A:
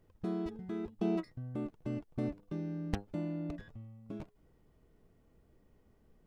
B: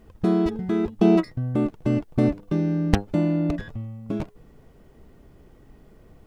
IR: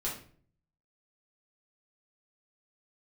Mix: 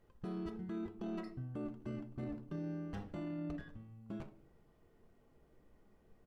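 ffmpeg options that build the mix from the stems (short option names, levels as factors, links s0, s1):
-filter_complex "[0:a]aemphasis=mode=production:type=cd,asplit=2[s0][s1];[s1]highpass=f=720:p=1,volume=2.51,asoftclip=type=tanh:threshold=0.0422[s2];[s0][s2]amix=inputs=2:normalize=0,lowpass=f=1300:p=1,volume=0.501,volume=0.794,asplit=2[s3][s4];[s4]volume=0.376[s5];[1:a]asplit=2[s6][s7];[s7]adelay=4.7,afreqshift=0.93[s8];[s6][s8]amix=inputs=2:normalize=1,adelay=0.7,volume=0.106[s9];[2:a]atrim=start_sample=2205[s10];[s5][s10]afir=irnorm=-1:irlink=0[s11];[s3][s9][s11]amix=inputs=3:normalize=0,alimiter=level_in=3.35:limit=0.0631:level=0:latency=1:release=15,volume=0.299"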